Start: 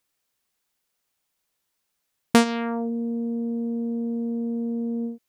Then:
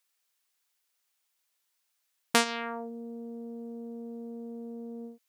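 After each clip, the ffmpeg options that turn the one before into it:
-af "highpass=f=1.2k:p=1"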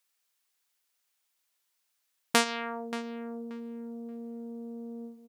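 -filter_complex "[0:a]asplit=2[a][b];[b]adelay=580,lowpass=f=2.8k:p=1,volume=-13dB,asplit=2[c][d];[d]adelay=580,lowpass=f=2.8k:p=1,volume=0.23,asplit=2[e][f];[f]adelay=580,lowpass=f=2.8k:p=1,volume=0.23[g];[a][c][e][g]amix=inputs=4:normalize=0"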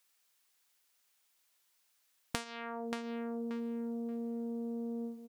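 -af "acompressor=threshold=-37dB:ratio=16,volume=3.5dB"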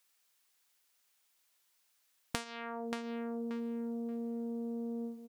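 -af anull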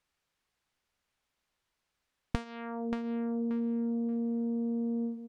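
-af "aemphasis=mode=reproduction:type=riaa"

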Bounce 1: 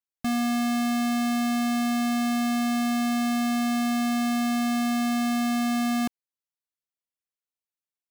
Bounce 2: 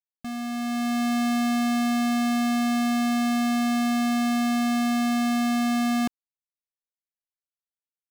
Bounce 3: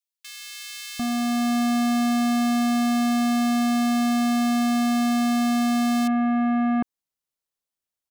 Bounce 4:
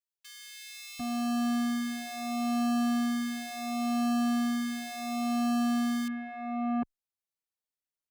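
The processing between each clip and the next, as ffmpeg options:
-af "anlmdn=1.58,dynaudnorm=f=170:g=9:m=9dB,volume=-7.5dB"
-filter_complex "[0:a]acompressor=threshold=-29dB:ratio=6,acrossover=split=2100[a][b];[a]adelay=750[c];[c][b]amix=inputs=2:normalize=0,volume=7dB"
-filter_complex "[0:a]asplit=2[a][b];[b]adelay=5.4,afreqshift=-0.71[c];[a][c]amix=inputs=2:normalize=1,volume=-5.5dB"

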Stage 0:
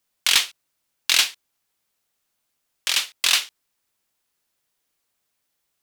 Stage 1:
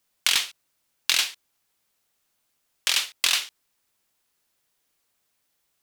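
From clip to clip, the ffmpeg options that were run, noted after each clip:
-af "acompressor=threshold=-20dB:ratio=5,volume=2dB"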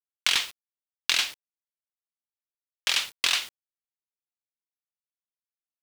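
-af "highshelf=f=7.9k:g=-11,acrusher=bits=6:mix=0:aa=0.000001"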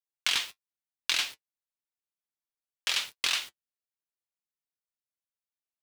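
-af "flanger=delay=6.1:depth=3.8:regen=-46:speed=0.9:shape=triangular"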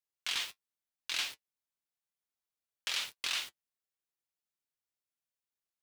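-af "alimiter=limit=-20.5dB:level=0:latency=1:release=67,volume=-1dB"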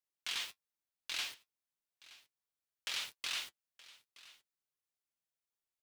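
-af "asoftclip=type=tanh:threshold=-24.5dB,aecho=1:1:922:0.1,volume=-3dB"

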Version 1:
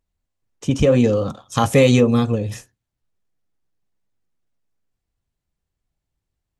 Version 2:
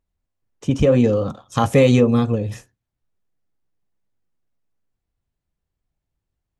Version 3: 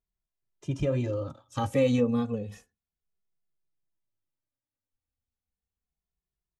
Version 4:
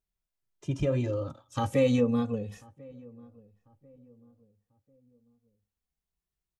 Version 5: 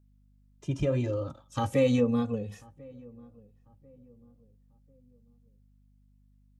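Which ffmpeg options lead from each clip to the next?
-af "highshelf=f=2.9k:g=-6.5"
-filter_complex "[0:a]asplit=2[a][b];[b]adelay=2.4,afreqshift=-0.32[c];[a][c]amix=inputs=2:normalize=1,volume=-9dB"
-filter_complex "[0:a]asplit=2[a][b];[b]adelay=1043,lowpass=f=920:p=1,volume=-23dB,asplit=2[c][d];[d]adelay=1043,lowpass=f=920:p=1,volume=0.4,asplit=2[e][f];[f]adelay=1043,lowpass=f=920:p=1,volume=0.4[g];[a][c][e][g]amix=inputs=4:normalize=0"
-af "aeval=exprs='val(0)+0.000891*(sin(2*PI*50*n/s)+sin(2*PI*2*50*n/s)/2+sin(2*PI*3*50*n/s)/3+sin(2*PI*4*50*n/s)/4+sin(2*PI*5*50*n/s)/5)':c=same"

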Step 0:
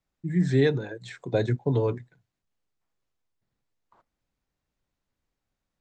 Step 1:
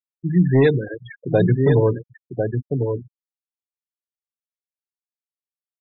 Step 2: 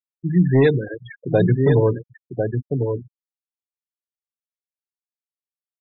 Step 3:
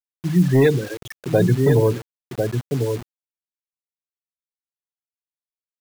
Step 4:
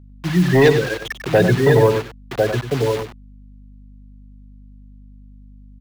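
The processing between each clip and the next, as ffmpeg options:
-af "aecho=1:1:1049:0.531,asoftclip=type=hard:threshold=-16dB,afftfilt=real='re*gte(hypot(re,im),0.0398)':imag='im*gte(hypot(re,im),0.0398)':win_size=1024:overlap=0.75,volume=7.5dB"
-af anull
-af "acrusher=bits=5:mix=0:aa=0.000001"
-filter_complex "[0:a]acrossover=split=300|530|4700[a][b][c][d];[c]aeval=exprs='0.251*sin(PI/2*2.24*val(0)/0.251)':c=same[e];[a][b][e][d]amix=inputs=4:normalize=0,aeval=exprs='val(0)+0.00794*(sin(2*PI*50*n/s)+sin(2*PI*2*50*n/s)/2+sin(2*PI*3*50*n/s)/3+sin(2*PI*4*50*n/s)/4+sin(2*PI*5*50*n/s)/5)':c=same,aecho=1:1:96:0.355"

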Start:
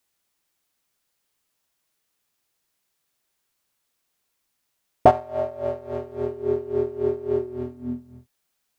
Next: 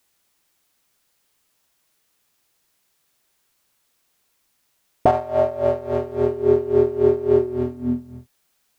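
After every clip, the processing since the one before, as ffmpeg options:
-af "alimiter=level_in=12dB:limit=-1dB:release=50:level=0:latency=1,volume=-4.5dB"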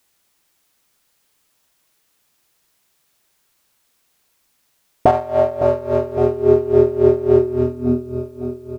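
-af "aecho=1:1:559|1118|1677|2236|2795|3354|3913:0.251|0.148|0.0874|0.0516|0.0304|0.018|0.0106,volume=3dB"

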